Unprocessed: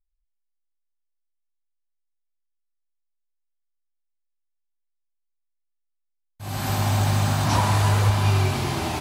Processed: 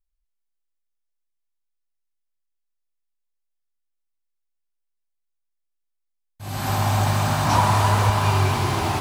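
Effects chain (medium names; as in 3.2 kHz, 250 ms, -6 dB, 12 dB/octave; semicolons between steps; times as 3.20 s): dynamic bell 1 kHz, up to +5 dB, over -35 dBFS, Q 1.1; bit-crushed delay 243 ms, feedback 80%, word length 7-bit, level -10 dB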